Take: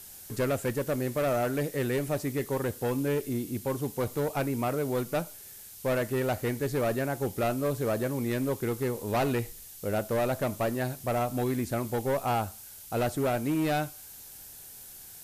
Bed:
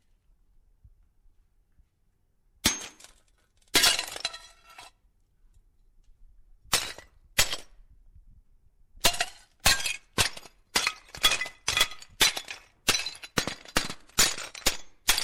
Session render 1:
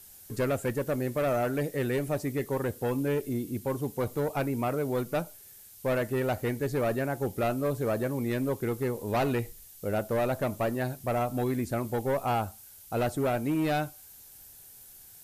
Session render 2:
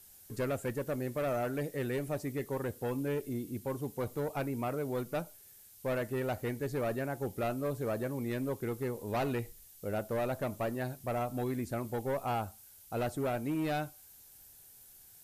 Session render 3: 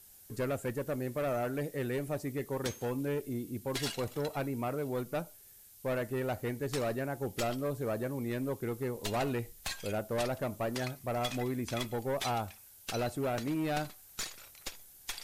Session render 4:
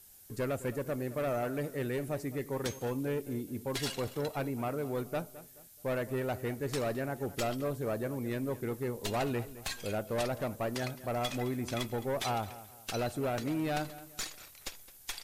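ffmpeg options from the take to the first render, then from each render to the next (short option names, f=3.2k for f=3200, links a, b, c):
-af "afftdn=nr=6:nf=-47"
-af "volume=-5.5dB"
-filter_complex "[1:a]volume=-17dB[a];[0:a][a]amix=inputs=2:normalize=0"
-filter_complex "[0:a]asplit=2[a][b];[b]adelay=214,lowpass=f=3.9k:p=1,volume=-16dB,asplit=2[c][d];[d]adelay=214,lowpass=f=3.9k:p=1,volume=0.36,asplit=2[e][f];[f]adelay=214,lowpass=f=3.9k:p=1,volume=0.36[g];[a][c][e][g]amix=inputs=4:normalize=0"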